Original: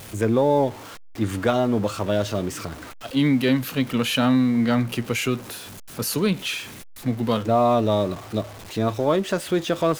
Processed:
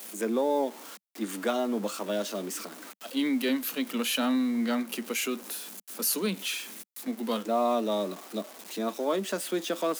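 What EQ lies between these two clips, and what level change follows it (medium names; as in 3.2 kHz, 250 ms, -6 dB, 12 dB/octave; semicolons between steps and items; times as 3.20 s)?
steep high-pass 190 Hz 72 dB/octave; treble shelf 5.9 kHz +11 dB; -7.5 dB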